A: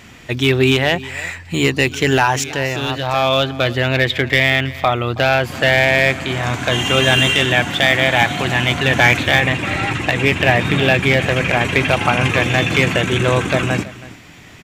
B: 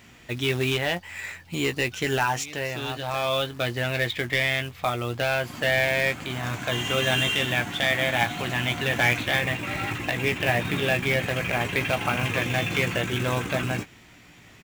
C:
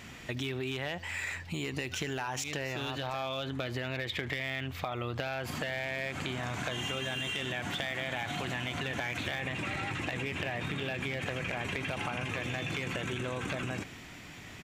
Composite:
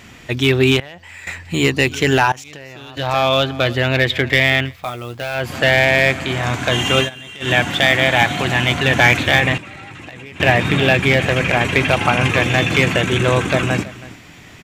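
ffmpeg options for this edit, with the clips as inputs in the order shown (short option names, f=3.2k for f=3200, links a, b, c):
-filter_complex "[2:a]asplit=4[a][b][c][d];[0:a]asplit=6[e][f][g][h][i][j];[e]atrim=end=0.802[k];[a]atrim=start=0.798:end=1.272[l];[f]atrim=start=1.268:end=2.322[m];[b]atrim=start=2.318:end=2.972[n];[g]atrim=start=2.968:end=4.77[o];[1:a]atrim=start=4.61:end=5.49[p];[h]atrim=start=5.33:end=7.1[q];[c]atrim=start=7:end=7.5[r];[i]atrim=start=7.4:end=9.582[s];[d]atrim=start=9.578:end=10.402[t];[j]atrim=start=10.398[u];[k][l]acrossfade=d=0.004:c1=hsin:c2=hsin[v];[v][m]acrossfade=d=0.004:c1=hsin:c2=hsin[w];[w][n]acrossfade=d=0.004:c1=hsin:c2=hsin[x];[x][o]acrossfade=d=0.004:c1=hsin:c2=hsin[y];[y][p]acrossfade=d=0.16:c1=tri:c2=tri[z];[z][q]acrossfade=d=0.16:c1=tri:c2=tri[aa];[aa][r]acrossfade=d=0.1:c1=tri:c2=tri[ab];[ab][s]acrossfade=d=0.1:c1=tri:c2=tri[ac];[ac][t]acrossfade=d=0.004:c1=hsin:c2=hsin[ad];[ad][u]acrossfade=d=0.004:c1=hsin:c2=hsin"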